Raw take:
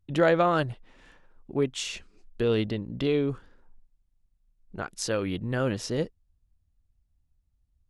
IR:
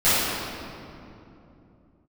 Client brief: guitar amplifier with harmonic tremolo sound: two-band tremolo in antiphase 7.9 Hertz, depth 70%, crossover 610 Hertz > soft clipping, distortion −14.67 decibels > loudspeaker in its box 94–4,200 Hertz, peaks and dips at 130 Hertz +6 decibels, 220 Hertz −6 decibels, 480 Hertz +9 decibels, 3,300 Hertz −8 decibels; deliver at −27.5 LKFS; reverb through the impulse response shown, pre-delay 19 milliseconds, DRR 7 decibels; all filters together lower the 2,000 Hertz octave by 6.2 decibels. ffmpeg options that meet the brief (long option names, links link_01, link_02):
-filter_complex "[0:a]equalizer=frequency=2000:width_type=o:gain=-8.5,asplit=2[link_01][link_02];[1:a]atrim=start_sample=2205,adelay=19[link_03];[link_02][link_03]afir=irnorm=-1:irlink=0,volume=-28dB[link_04];[link_01][link_04]amix=inputs=2:normalize=0,acrossover=split=610[link_05][link_06];[link_05]aeval=exprs='val(0)*(1-0.7/2+0.7/2*cos(2*PI*7.9*n/s))':channel_layout=same[link_07];[link_06]aeval=exprs='val(0)*(1-0.7/2-0.7/2*cos(2*PI*7.9*n/s))':channel_layout=same[link_08];[link_07][link_08]amix=inputs=2:normalize=0,asoftclip=threshold=-23dB,highpass=94,equalizer=frequency=130:width_type=q:width=4:gain=6,equalizer=frequency=220:width_type=q:width=4:gain=-6,equalizer=frequency=480:width_type=q:width=4:gain=9,equalizer=frequency=3300:width_type=q:width=4:gain=-8,lowpass=frequency=4200:width=0.5412,lowpass=frequency=4200:width=1.3066,volume=3dB"